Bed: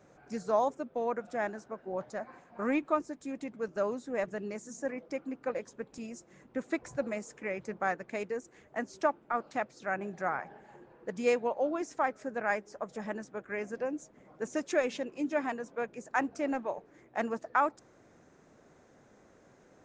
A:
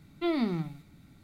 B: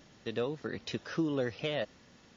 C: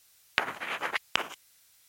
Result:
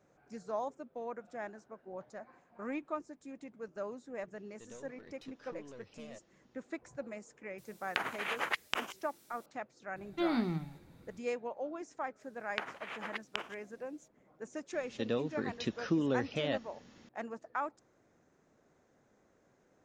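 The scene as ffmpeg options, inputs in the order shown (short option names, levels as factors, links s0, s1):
-filter_complex "[2:a]asplit=2[s0][s1];[3:a]asplit=2[s2][s3];[0:a]volume=0.355[s4];[s0]aeval=exprs='(tanh(39.8*val(0)+0.45)-tanh(0.45))/39.8':c=same[s5];[s2]alimiter=level_in=2.11:limit=0.891:release=50:level=0:latency=1[s6];[s3]equalizer=f=15000:w=0.45:g=-13.5[s7];[s1]equalizer=f=230:t=o:w=0.77:g=5.5[s8];[s5]atrim=end=2.36,asetpts=PTS-STARTPTS,volume=0.2,afade=t=in:d=0.004:c=hsin,afade=t=out:st=2.356:d=0.004:c=hsin,adelay=4340[s9];[s6]atrim=end=1.88,asetpts=PTS-STARTPTS,volume=0.355,afade=t=in:d=0.004:c=hsin,afade=t=out:st=1.876:d=0.004:c=hsin,adelay=7580[s10];[1:a]atrim=end=1.23,asetpts=PTS-STARTPTS,volume=0.668,afade=t=in:d=0.004:c=hsin,afade=t=out:st=1.226:d=0.004:c=hsin,adelay=9960[s11];[s7]atrim=end=1.88,asetpts=PTS-STARTPTS,volume=0.335,afade=t=in:d=0.004:c=hsin,afade=t=out:st=1.876:d=0.004:c=hsin,adelay=538020S[s12];[s8]atrim=end=2.36,asetpts=PTS-STARTPTS,volume=0.841,afade=t=in:d=0.004:c=hsin,afade=t=out:st=2.356:d=0.004:c=hsin,adelay=14730[s13];[s4][s9][s10][s11][s12][s13]amix=inputs=6:normalize=0"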